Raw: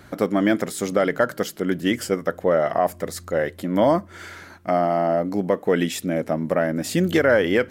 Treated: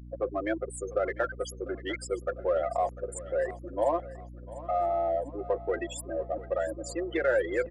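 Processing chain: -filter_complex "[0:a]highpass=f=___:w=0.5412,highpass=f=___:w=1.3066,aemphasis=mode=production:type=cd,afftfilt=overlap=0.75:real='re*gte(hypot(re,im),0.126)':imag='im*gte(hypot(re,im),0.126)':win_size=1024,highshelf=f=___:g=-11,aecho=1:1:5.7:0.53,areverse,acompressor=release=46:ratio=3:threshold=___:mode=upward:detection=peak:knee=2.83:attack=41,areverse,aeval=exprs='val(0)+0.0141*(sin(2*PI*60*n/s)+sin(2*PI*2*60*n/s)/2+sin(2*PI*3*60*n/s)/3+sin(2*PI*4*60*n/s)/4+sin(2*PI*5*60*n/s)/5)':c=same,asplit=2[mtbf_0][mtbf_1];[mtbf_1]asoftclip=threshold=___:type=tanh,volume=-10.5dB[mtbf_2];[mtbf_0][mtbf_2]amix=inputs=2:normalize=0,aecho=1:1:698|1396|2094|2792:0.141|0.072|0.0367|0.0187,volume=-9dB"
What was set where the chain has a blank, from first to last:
380, 380, 3300, -33dB, -22dB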